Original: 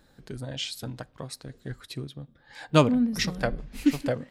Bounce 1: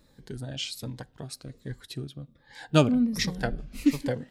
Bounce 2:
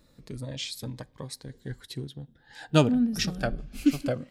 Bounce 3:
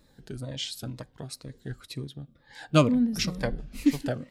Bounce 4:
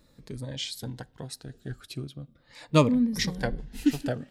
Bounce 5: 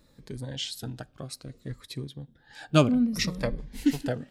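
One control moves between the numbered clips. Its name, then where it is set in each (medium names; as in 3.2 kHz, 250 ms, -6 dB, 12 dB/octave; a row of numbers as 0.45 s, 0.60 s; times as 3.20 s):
Shepard-style phaser, rate: 1.3 Hz, 0.2 Hz, 2.1 Hz, 0.39 Hz, 0.62 Hz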